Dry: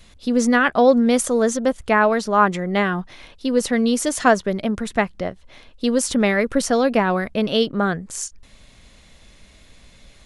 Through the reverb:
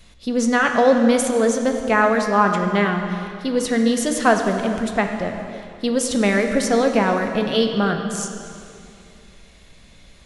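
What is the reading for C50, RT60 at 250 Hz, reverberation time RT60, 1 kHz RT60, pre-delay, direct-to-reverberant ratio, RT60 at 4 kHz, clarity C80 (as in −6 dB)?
5.5 dB, 2.9 s, 2.6 s, 2.5 s, 3 ms, 4.0 dB, 2.2 s, 6.5 dB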